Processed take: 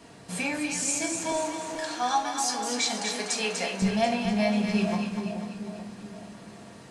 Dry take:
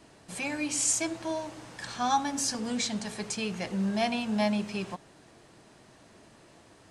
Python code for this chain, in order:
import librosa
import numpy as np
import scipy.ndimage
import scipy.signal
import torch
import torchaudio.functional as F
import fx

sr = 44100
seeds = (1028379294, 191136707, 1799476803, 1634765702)

y = fx.highpass(x, sr, hz=fx.steps((0.0, 64.0), (1.32, 420.0), (3.82, 53.0)), slope=12)
y = fx.rider(y, sr, range_db=4, speed_s=0.5)
y = fx.echo_split(y, sr, split_hz=760.0, low_ms=430, high_ms=245, feedback_pct=52, wet_db=-5.5)
y = fx.room_shoebox(y, sr, seeds[0], volume_m3=460.0, walls='furnished', distance_m=1.7)